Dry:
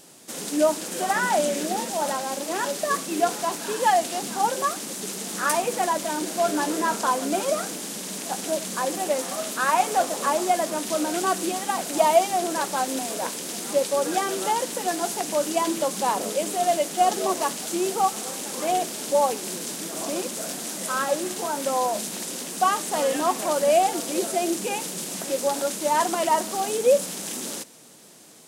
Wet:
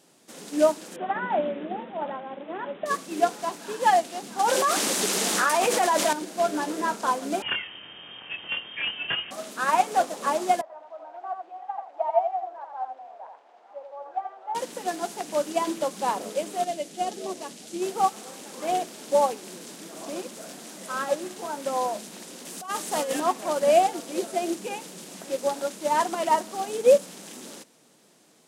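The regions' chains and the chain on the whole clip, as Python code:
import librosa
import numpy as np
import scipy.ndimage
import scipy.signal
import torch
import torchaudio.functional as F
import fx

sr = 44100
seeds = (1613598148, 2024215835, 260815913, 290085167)

y = fx.chain(x, sr, fx.lowpass(hz=1500.0, slope=6),
    fx.resample_bad(factor=6, down='none', up='filtered'), at=(0.96, 2.86))
y = fx.chain(y, sr, fx.highpass(hz=480.0, slope=6),
    fx.env_flatten(amount_pct=100), at=(4.39, 6.13))
y = fx.chain(y, sr, fx.overflow_wrap(gain_db=16.5),
    fx.freq_invert(carrier_hz=3400),
    fx.doubler(ms=24.0, db=-3.5), at=(7.42, 9.31))
y = fx.chain(y, sr, fx.ladder_bandpass(hz=840.0, resonance_pct=65),
    fx.echo_single(ms=85, db=-4.5), at=(10.61, 14.55))
y = fx.chain(y, sr, fx.bessel_lowpass(hz=11000.0, order=2),
    fx.peak_eq(hz=1100.0, db=-9.5, octaves=1.7), at=(16.64, 17.82))
y = fx.chain(y, sr, fx.high_shelf(hz=5200.0, db=7.0),
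    fx.over_compress(threshold_db=-23.0, ratio=-0.5), at=(22.45, 23.2))
y = scipy.signal.sosfilt(scipy.signal.butter(2, 120.0, 'highpass', fs=sr, output='sos'), y)
y = fx.high_shelf(y, sr, hz=6100.0, db=-8.0)
y = fx.upward_expand(y, sr, threshold_db=-32.0, expansion=1.5)
y = F.gain(torch.from_numpy(y), 2.0).numpy()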